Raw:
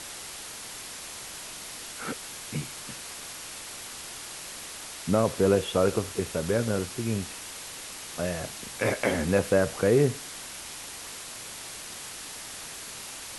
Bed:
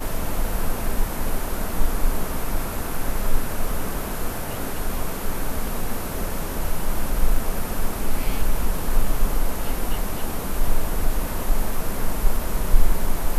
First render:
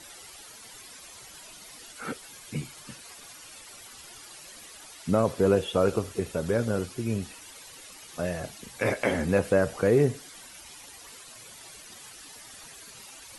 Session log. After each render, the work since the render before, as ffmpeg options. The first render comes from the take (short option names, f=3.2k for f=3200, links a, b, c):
-af "afftdn=nr=12:nf=-41"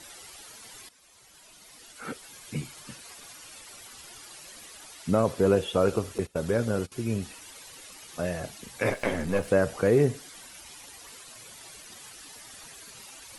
-filter_complex "[0:a]asettb=1/sr,asplit=3[a][b][c];[a]atrim=end=6.184[d];[b]atrim=start=6.18:end=6.92,asetpts=PTS-STARTPTS,afade=t=in:d=0.004:c=qsin,afade=t=out:st=0.736:d=0.004:c=qsin,agate=range=-19dB:threshold=-35dB:ratio=16:release=100:detection=peak[e];[c]atrim=start=6.916[f];[d][e]acrossfade=d=0.004:c1=hsin:c2=qsin[g];[g][f]acrossfade=d=0.004:c1=qsin:c2=hsin,asettb=1/sr,asplit=3[h][i][j];[h]atrim=end=8.904[k];[i]atrim=start=8.9:end=9.48,asetpts=PTS-STARTPTS,afade=t=in:d=0.004:c=qsin,afade=t=out:st=0.576:d=0.004:c=qsin,aeval=exprs='if(lt(val(0),0),0.447*val(0),val(0))':c=same[l];[j]atrim=start=9.476[m];[k][l]acrossfade=d=0.004:c1=hsin:c2=qsin[n];[n][m]acrossfade=d=0.004:c1=qsin:c2=hsin,asplit=2[o][p];[o]atrim=end=0.89,asetpts=PTS-STARTPTS,afade=t=out:st=0.886:d=0.004:c=hsin:silence=0.177828[q];[p]atrim=start=0.89,asetpts=PTS-STARTPTS,afade=t=in:d=1.65:silence=0.177828[r];[q][r]concat=n=2:v=0:a=1"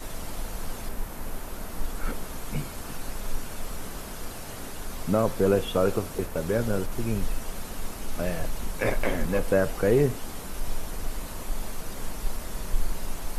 -filter_complex "[1:a]volume=-10dB[a];[0:a][a]amix=inputs=2:normalize=0"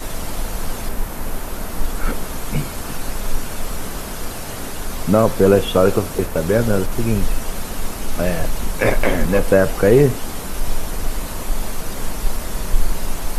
-af "volume=9.5dB,alimiter=limit=-1dB:level=0:latency=1"